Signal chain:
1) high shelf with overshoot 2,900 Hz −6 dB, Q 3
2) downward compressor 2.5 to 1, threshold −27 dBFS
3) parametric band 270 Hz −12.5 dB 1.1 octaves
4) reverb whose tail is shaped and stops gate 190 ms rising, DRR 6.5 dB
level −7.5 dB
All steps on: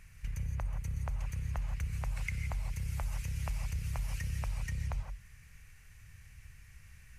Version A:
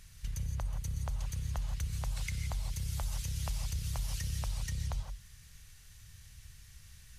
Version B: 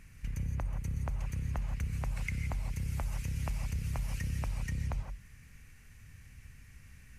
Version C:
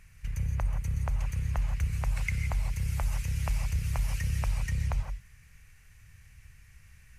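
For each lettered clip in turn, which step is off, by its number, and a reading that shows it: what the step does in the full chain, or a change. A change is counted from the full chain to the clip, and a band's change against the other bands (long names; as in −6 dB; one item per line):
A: 1, 4 kHz band +8.0 dB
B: 3, 250 Hz band +5.0 dB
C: 2, average gain reduction 4.0 dB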